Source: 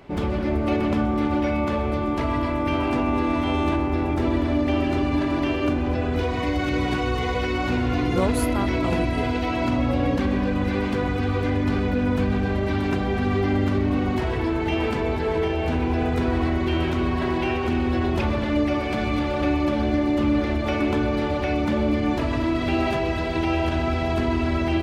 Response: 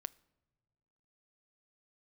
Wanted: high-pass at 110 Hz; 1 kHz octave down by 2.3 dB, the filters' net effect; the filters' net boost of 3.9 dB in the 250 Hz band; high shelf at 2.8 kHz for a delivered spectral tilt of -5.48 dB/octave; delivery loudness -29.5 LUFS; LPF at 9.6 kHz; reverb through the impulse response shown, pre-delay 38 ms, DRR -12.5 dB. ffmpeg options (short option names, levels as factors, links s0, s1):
-filter_complex "[0:a]highpass=110,lowpass=9600,equalizer=f=250:t=o:g=5,equalizer=f=1000:t=o:g=-4,highshelf=f=2800:g=4.5,asplit=2[s0][s1];[1:a]atrim=start_sample=2205,adelay=38[s2];[s1][s2]afir=irnorm=-1:irlink=0,volume=6.31[s3];[s0][s3]amix=inputs=2:normalize=0,volume=0.0891"